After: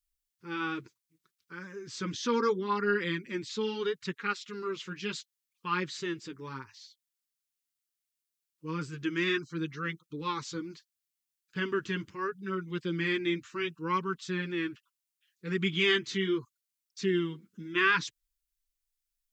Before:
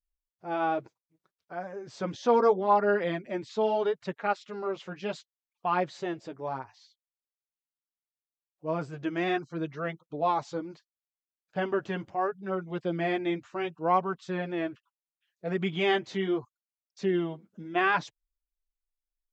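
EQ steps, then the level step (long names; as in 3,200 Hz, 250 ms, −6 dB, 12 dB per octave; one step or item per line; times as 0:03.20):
Butterworth band-reject 680 Hz, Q 0.9
high-shelf EQ 2,700 Hz +9.5 dB
0.0 dB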